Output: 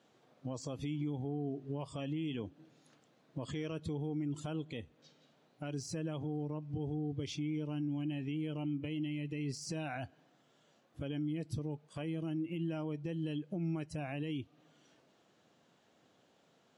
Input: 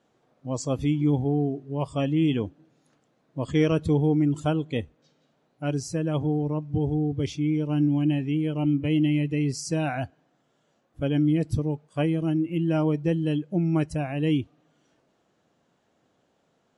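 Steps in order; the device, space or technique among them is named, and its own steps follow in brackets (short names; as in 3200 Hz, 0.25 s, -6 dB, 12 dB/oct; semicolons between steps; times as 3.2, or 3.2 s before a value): broadcast voice chain (HPF 92 Hz; de-esser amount 90%; compressor 4:1, threshold -33 dBFS, peak gain reduction 14 dB; bell 3700 Hz +5 dB 1.7 oct; limiter -28.5 dBFS, peak gain reduction 8.5 dB); gain -1 dB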